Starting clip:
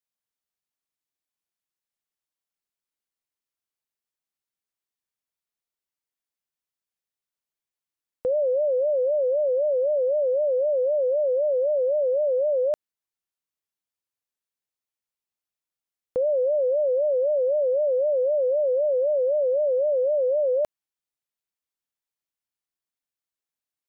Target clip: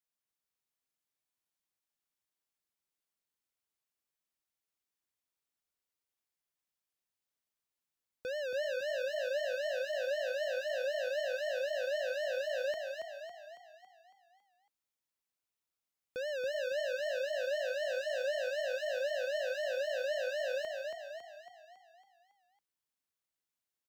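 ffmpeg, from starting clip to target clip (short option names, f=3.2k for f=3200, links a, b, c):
-filter_complex "[0:a]asettb=1/sr,asplit=3[a][b][c];[a]atrim=end=17.814[d];[b]atrim=start=17.81:end=18.29,asetpts=PTS-STARTPTS,afade=t=in:d=0.004:c=qsin,afade=t=out:st=0.476:d=0.004:c=qsin,equalizer=f=77:w=0.44:g=7[e];[c]atrim=start=18.286[f];[d][e]acrossfade=d=0.004:c1=hsin:c2=qsin[g];[g][f]acrossfade=d=0.004:c1=qsin:c2=hsin,volume=34dB,asoftclip=hard,volume=-34dB,asplit=8[h][i][j][k][l][m][n][o];[i]adelay=277,afreqshift=30,volume=-4dB[p];[j]adelay=554,afreqshift=60,volume=-9.7dB[q];[k]adelay=831,afreqshift=90,volume=-15.4dB[r];[l]adelay=1108,afreqshift=120,volume=-21dB[s];[m]adelay=1385,afreqshift=150,volume=-26.7dB[t];[n]adelay=1662,afreqshift=180,volume=-32.4dB[u];[o]adelay=1939,afreqshift=210,volume=-38.1dB[v];[h][p][q][r][s][t][u][v]amix=inputs=8:normalize=0,volume=-2.5dB"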